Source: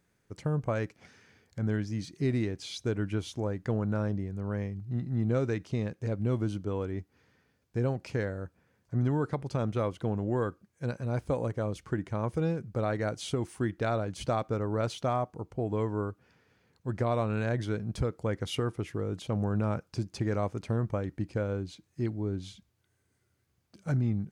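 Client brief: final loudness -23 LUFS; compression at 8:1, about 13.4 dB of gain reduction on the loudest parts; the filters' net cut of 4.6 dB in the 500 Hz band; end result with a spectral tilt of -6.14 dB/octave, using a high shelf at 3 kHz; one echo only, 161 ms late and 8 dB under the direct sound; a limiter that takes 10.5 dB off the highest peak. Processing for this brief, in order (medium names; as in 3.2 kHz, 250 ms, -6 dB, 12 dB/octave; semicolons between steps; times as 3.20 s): peaking EQ 500 Hz -5.5 dB; treble shelf 3 kHz -3.5 dB; compression 8:1, threshold -39 dBFS; peak limiter -39 dBFS; delay 161 ms -8 dB; trim +25.5 dB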